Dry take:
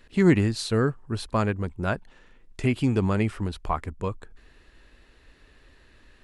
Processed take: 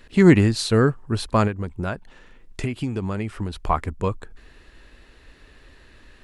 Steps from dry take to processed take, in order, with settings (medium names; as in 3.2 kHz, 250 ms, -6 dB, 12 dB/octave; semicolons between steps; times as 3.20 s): 1.47–3.57 s: compression 6:1, threshold -29 dBFS, peak gain reduction 11 dB; trim +5.5 dB